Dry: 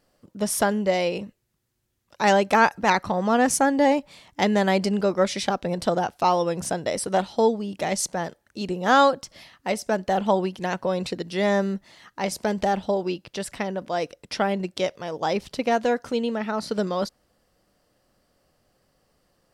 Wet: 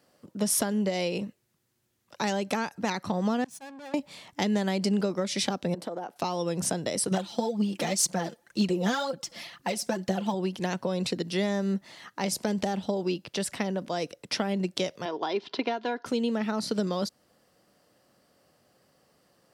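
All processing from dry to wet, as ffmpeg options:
-filter_complex "[0:a]asettb=1/sr,asplit=3[s0][s1][s2];[s0]atrim=end=3.444[s3];[s1]atrim=start=3.44:end=3.94,asetpts=PTS-STARTPTS,afade=t=in:d=0.004:c=qsin,afade=t=out:st=0.496:d=0.004:c=qsin,aeval=exprs='(tanh(31.6*val(0)+0.5)-tanh(0.5))/31.6':c=same,aecho=1:1:1.2:0.33,atrim=end_sample=22050,agate=range=0.0224:threshold=0.0794:ratio=3:release=100:detection=peak[s4];[s2]atrim=start=3.936[s5];[s3][s4]acrossfade=d=0.004:c1=hsin:c2=qsin[s6];[s6][s5]acrossfade=d=0.004:c1=qsin:c2=hsin,asettb=1/sr,asplit=3[s7][s8][s9];[s7]atrim=end=5.744[s10];[s8]atrim=start=5.74:end=6.16,asetpts=PTS-STARTPTS,afade=t=in:d=0.004:c=qsin,afade=t=out:st=0.416:d=0.004:c=qsin,highpass=320,equalizer=f=5400:w=0.34:g=-13,acompressor=threshold=0.0282:ratio=4:attack=3.2:release=140:knee=1:detection=peak[s11];[s9]atrim=start=6.156[s12];[s10][s11]acrossfade=d=0.004:c1=hsin:c2=qsin[s13];[s13][s12]acrossfade=d=0.004:c1=qsin:c2=hsin,asettb=1/sr,asplit=3[s14][s15][s16];[s14]atrim=end=7.114[s17];[s15]atrim=start=7.11:end=10.34,asetpts=PTS-STARTPTS,afade=t=in:d=0.004:c=qsin,afade=t=out:st=3.226:d=0.004:c=qsin,aecho=1:1:5.8:0.51,atrim=end_sample=142443,aphaser=in_gain=1:out_gain=1:delay=4.7:decay=0.55:speed=2:type=triangular[s18];[s16]atrim=start=10.336[s19];[s17][s18]acrossfade=d=0.004:c1=hsin:c2=qsin[s20];[s20][s19]acrossfade=d=0.004:c1=qsin:c2=hsin,asettb=1/sr,asplit=3[s21][s22][s23];[s21]atrim=end=15.054[s24];[s22]atrim=start=15.05:end=16.06,asetpts=PTS-STARTPTS,afade=t=in:d=0.004:c=qsin,afade=t=out:st=1.006:d=0.004:c=qsin,highpass=270,equalizer=f=400:t=q:w=4:g=5,equalizer=f=570:t=q:w=4:g=-3,equalizer=f=930:t=q:w=4:g=8,equalizer=f=1500:t=q:w=4:g=4,equalizer=f=3500:t=q:w=4:g=3,lowpass=f=4400:w=0.5412,lowpass=f=4400:w=1.3066,aecho=1:1:2.9:0.39,atrim=end_sample=44541[s25];[s23]atrim=start=16.056[s26];[s24][s25]acrossfade=d=0.004:c1=hsin:c2=qsin[s27];[s27][s26]acrossfade=d=0.004:c1=qsin:c2=hsin,acompressor=threshold=0.0794:ratio=6,highpass=120,acrossover=split=330|3000[s28][s29][s30];[s29]acompressor=threshold=0.0112:ratio=2[s31];[s28][s31][s30]amix=inputs=3:normalize=0,volume=1.33"

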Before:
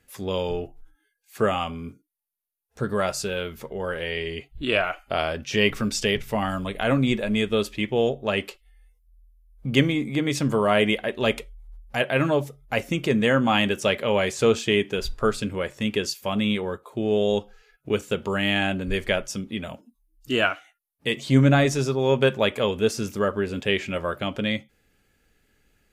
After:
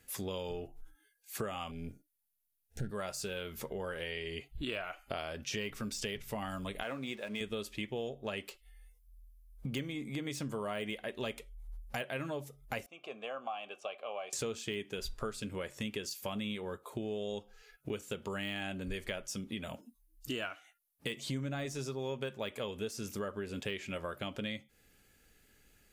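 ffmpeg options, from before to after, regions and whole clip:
-filter_complex "[0:a]asettb=1/sr,asplit=3[s0][s1][s2];[s0]atrim=end=1.714[s3];[s1]atrim=start=1.71:end=2.91,asetpts=PTS-STARTPTS,afade=t=in:d=0.004:c=qsin,afade=t=out:st=1.196:d=0.004:c=qsin,aeval=exprs='if(lt(val(0),0),0.447*val(0),val(0))':c=same,asubboost=boost=10.5:cutoff=250,asuperstop=centerf=1100:order=20:qfactor=2.2[s4];[s2]atrim=start=2.906[s5];[s3][s4]acrossfade=d=0.004:c1=hsin:c2=qsin[s6];[s6][s5]acrossfade=d=0.004:c1=qsin:c2=hsin,asettb=1/sr,asplit=3[s7][s8][s9];[s7]atrim=end=6.834[s10];[s8]atrim=start=6.83:end=7.41,asetpts=PTS-STARTPTS,afade=t=in:d=0.004:c=qsin,afade=t=out:st=0.576:d=0.004:c=qsin,highpass=f=520:p=1,highshelf=f=4900:g=-10,aeval=exprs='sgn(val(0))*max(abs(val(0))-0.00299,0)':c=same[s11];[s9]atrim=start=7.406[s12];[s10][s11]acrossfade=d=0.004:c1=hsin:c2=qsin[s13];[s13][s12]acrossfade=d=0.004:c1=qsin:c2=hsin,asettb=1/sr,asplit=3[s14][s15][s16];[s14]atrim=end=12.864[s17];[s15]atrim=start=12.86:end=14.33,asetpts=PTS-STARTPTS,afade=t=in:d=0.004:c=qsin,afade=t=out:st=1.466:d=0.004:c=qsin,asplit=3[s18][s19][s20];[s18]bandpass=f=730:t=q:w=8,volume=1[s21];[s19]bandpass=f=1090:t=q:w=8,volume=0.501[s22];[s20]bandpass=f=2440:t=q:w=8,volume=0.355[s23];[s21][s22][s23]amix=inputs=3:normalize=0,lowshelf=f=250:g=-10.5,bandreject=f=2500:w=14[s24];[s16]atrim=start=14.326[s25];[s17][s24]acrossfade=d=0.004:c1=hsin:c2=qsin[s26];[s26][s25]acrossfade=d=0.004:c1=qsin:c2=hsin,deesser=0.6,highshelf=f=4600:g=8,acompressor=threshold=0.0178:ratio=5,volume=0.794"

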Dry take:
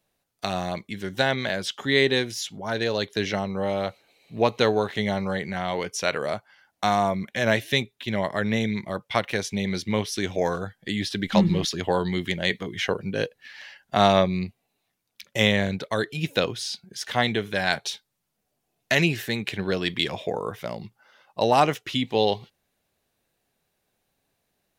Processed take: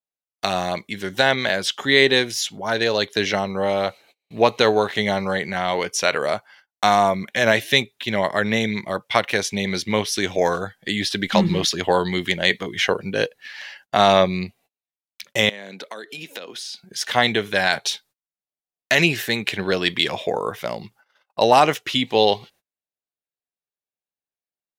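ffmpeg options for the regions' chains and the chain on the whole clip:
-filter_complex "[0:a]asettb=1/sr,asplit=3[s0][s1][s2];[s0]atrim=end=15.494[s3];[s1]atrim=start=15.49:end=16.83,asetpts=PTS-STARTPTS,afade=t=in:d=0.004:c=qsin,afade=t=out:st=1.336:d=0.004:c=qsin,highpass=f=200:w=0.5412,highpass=f=200:w=1.3066,acompressor=threshold=0.0158:ratio=12:attack=3.2:release=140:knee=1:detection=peak[s4];[s2]atrim=start=16.826[s5];[s3][s4]acrossfade=d=0.004:c1=hsin:c2=qsin[s6];[s6][s5]acrossfade=d=0.004:c1=qsin:c2=hsin,agate=range=0.0282:threshold=0.002:ratio=16:detection=peak,lowshelf=f=260:g=-9,alimiter=level_in=2.51:limit=0.891:release=50:level=0:latency=1,volume=0.891"

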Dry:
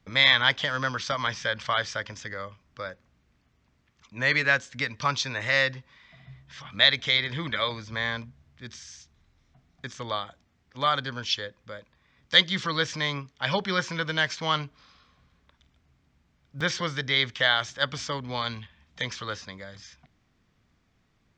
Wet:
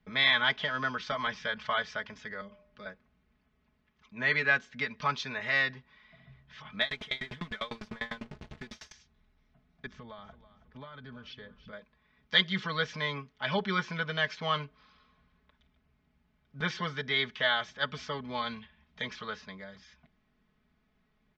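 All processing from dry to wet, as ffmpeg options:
-filter_complex "[0:a]asettb=1/sr,asplit=3[s0][s1][s2];[s0]atrim=end=2.414[s3];[s1]atrim=start=2.41:end=2.86,asetpts=PTS-STARTPTS,afade=t=in:d=0.004:c=qsin,afade=t=out:st=0.446:d=0.004:c=qsin,aecho=1:1:4.8:0.49,atrim=end_sample=19845,bandreject=f=120.8:t=h:w=4,bandreject=f=241.6:t=h:w=4,bandreject=f=362.4:t=h:w=4,bandreject=f=483.2:t=h:w=4,bandreject=f=604:t=h:w=4,bandreject=f=724.8:t=h:w=4,bandreject=f=845.6:t=h:w=4,acrossover=split=450|3000[s4][s5][s6];[s5]acompressor=threshold=0.00178:ratio=2.5:attack=3.2:release=140:knee=2.83:detection=peak[s7];[s4][s7][s6]amix=inputs=3:normalize=0[s8];[s2]atrim=start=2.856[s9];[s3][s8]acrossfade=d=0.004:c1=hsin:c2=qsin[s10];[s10][s9]acrossfade=d=0.004:c1=qsin:c2=hsin,asettb=1/sr,asplit=3[s11][s12][s13];[s11]atrim=end=6.814[s14];[s12]atrim=start=6.81:end=8.92,asetpts=PTS-STARTPTS,afade=t=in:d=0.004:c=qsin,afade=t=out:st=2.106:d=0.004:c=qsin,aeval=exprs='val(0)+0.5*0.0422*sgn(val(0))':c=same,aeval=exprs='val(0)*pow(10,-30*if(lt(mod(10*n/s,1),2*abs(10)/1000),1-mod(10*n/s,1)/(2*abs(10)/1000),(mod(10*n/s,1)-2*abs(10)/1000)/(1-2*abs(10)/1000))/20)':c=same[s15];[s13]atrim=start=8.916[s16];[s14][s15]acrossfade=d=0.004:c1=hsin:c2=qsin[s17];[s17][s16]acrossfade=d=0.004:c1=qsin:c2=hsin,asettb=1/sr,asplit=3[s18][s19][s20];[s18]atrim=end=9.864[s21];[s19]atrim=start=9.86:end=11.73,asetpts=PTS-STARTPTS,afade=t=in:d=0.004:c=qsin,afade=t=out:st=1.866:d=0.004:c=qsin,aemphasis=mode=reproduction:type=bsi,acompressor=threshold=0.0141:ratio=10:attack=3.2:release=140:knee=1:detection=peak,aecho=1:1:325|650|975:0.178|0.0676|0.0257,atrim=end_sample=82467[s22];[s20]atrim=start=11.726[s23];[s21][s22]acrossfade=d=0.004:c1=hsin:c2=qsin[s24];[s24][s23]acrossfade=d=0.004:c1=qsin:c2=hsin,lowpass=3500,aecho=1:1:4.7:0.71,volume=0.531"

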